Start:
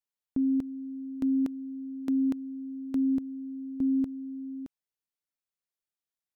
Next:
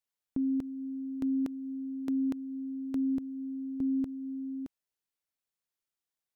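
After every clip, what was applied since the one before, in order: dynamic EQ 250 Hz, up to -3 dB, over -37 dBFS, Q 3.8; in parallel at -1 dB: limiter -30.5 dBFS, peak gain reduction 8.5 dB; on the sum: gain -4.5 dB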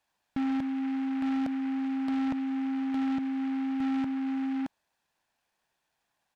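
comb 1.2 ms, depth 80%; overdrive pedal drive 27 dB, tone 1200 Hz, clips at -23.5 dBFS; noise-modulated delay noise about 1600 Hz, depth 0.055 ms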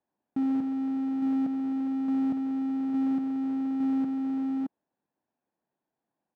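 half-waves squared off; band-pass 280 Hz, Q 1.3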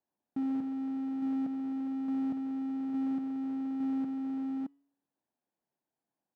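resonator 140 Hz, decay 0.66 s, harmonics all, mix 30%; gain -2.5 dB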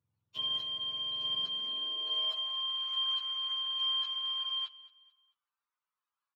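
spectrum mirrored in octaves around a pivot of 920 Hz; feedback echo 0.221 s, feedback 35%, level -19 dB; high-pass sweep 110 Hz -> 1200 Hz, 1.25–2.72

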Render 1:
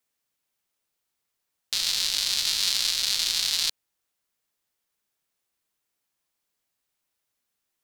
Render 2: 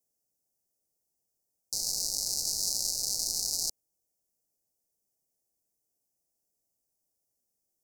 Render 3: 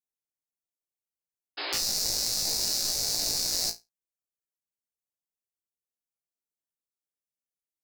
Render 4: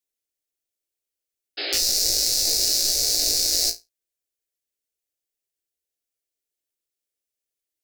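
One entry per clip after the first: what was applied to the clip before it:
inverse Chebyshev band-stop 1200–3500 Hz, stop band 40 dB
sample leveller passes 5; painted sound noise, 1.57–1.77, 280–5200 Hz -27 dBFS; flutter echo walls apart 3 m, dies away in 0.2 s; gain -8 dB
fixed phaser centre 420 Hz, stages 4; gain +7.5 dB

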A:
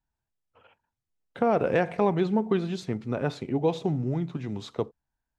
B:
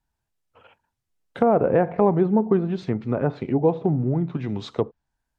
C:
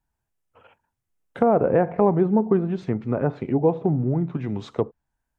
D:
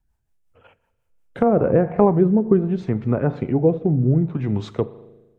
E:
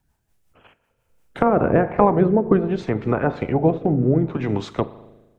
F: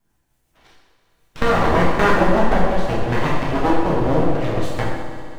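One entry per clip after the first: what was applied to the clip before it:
treble ducked by the level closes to 1100 Hz, closed at -23.5 dBFS; gain +5.5 dB
bell 4200 Hz -7 dB 1 oct
low shelf 89 Hz +10.5 dB; spring tank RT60 1.4 s, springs 38 ms, chirp 60 ms, DRR 17 dB; rotary speaker horn 5.5 Hz, later 0.65 Hz, at 1.29; gain +3.5 dB
spectral limiter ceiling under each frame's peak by 14 dB
full-wave rectifier; on a send: multi-head echo 65 ms, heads second and third, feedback 73%, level -15 dB; on the sum: plate-style reverb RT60 1 s, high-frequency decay 0.85×, DRR -4 dB; gain -1 dB

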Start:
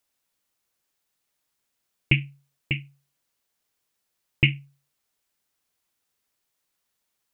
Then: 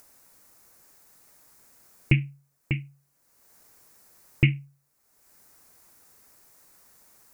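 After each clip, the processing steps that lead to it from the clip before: bell 3200 Hz -13.5 dB 0.9 oct; in parallel at -1.5 dB: upward compressor, threshold -32 dBFS; on the sum: gain -3 dB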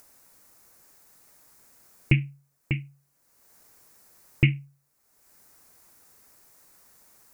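nothing audible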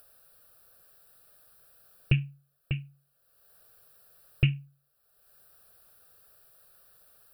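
fixed phaser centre 1400 Hz, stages 8

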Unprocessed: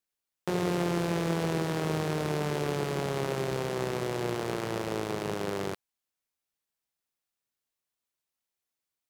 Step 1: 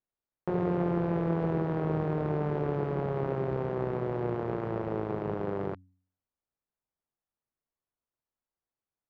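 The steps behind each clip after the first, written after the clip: LPF 1200 Hz 12 dB/oct; low shelf 86 Hz +6.5 dB; de-hum 92.26 Hz, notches 3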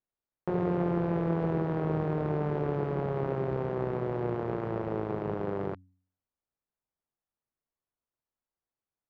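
nothing audible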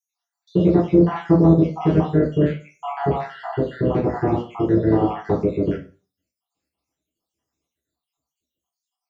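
random spectral dropouts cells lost 73%; in parallel at -5.5 dB: soft clip -25.5 dBFS, distortion -14 dB; on the sum: reverb RT60 0.35 s, pre-delay 3 ms, DRR -4.5 dB; gain +2.5 dB

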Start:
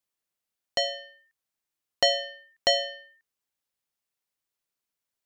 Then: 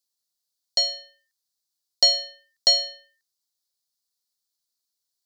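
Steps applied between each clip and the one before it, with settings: resonant high shelf 3300 Hz +10 dB, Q 3; gain -6 dB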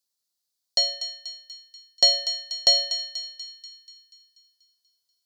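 thinning echo 0.242 s, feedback 57%, high-pass 1200 Hz, level -9.5 dB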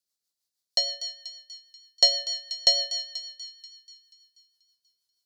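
rotary speaker horn 6.3 Hz

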